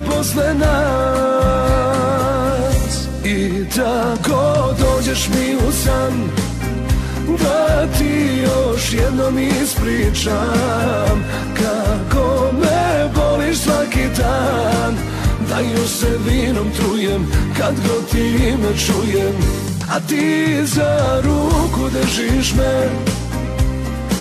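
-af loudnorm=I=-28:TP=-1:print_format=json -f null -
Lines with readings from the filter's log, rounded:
"input_i" : "-16.7",
"input_tp" : "-5.6",
"input_lra" : "1.5",
"input_thresh" : "-26.7",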